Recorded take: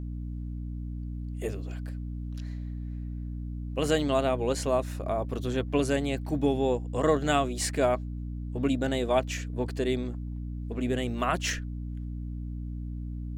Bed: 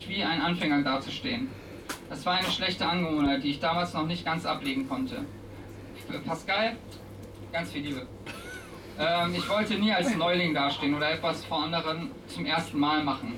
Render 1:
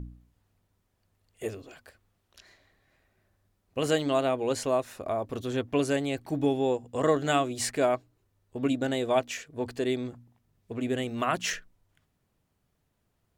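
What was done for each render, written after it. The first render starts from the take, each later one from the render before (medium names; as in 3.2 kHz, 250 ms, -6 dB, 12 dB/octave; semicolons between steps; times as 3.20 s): de-hum 60 Hz, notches 5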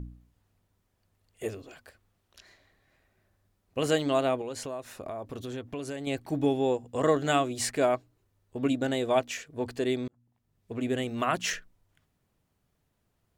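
4.41–6.07 s: compression 4:1, threshold -34 dBFS; 10.08–10.76 s: fade in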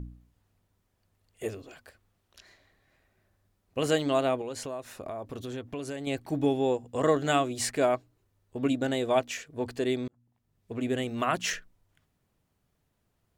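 no audible change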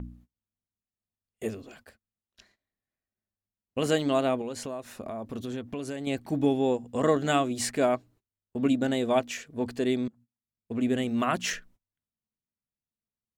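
gate -55 dBFS, range -26 dB; peaking EQ 220 Hz +10 dB 0.37 oct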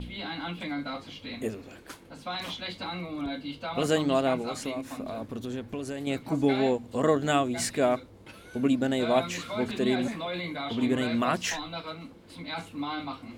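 add bed -8 dB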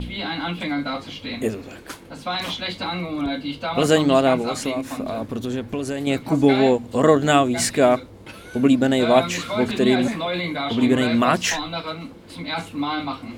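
trim +8.5 dB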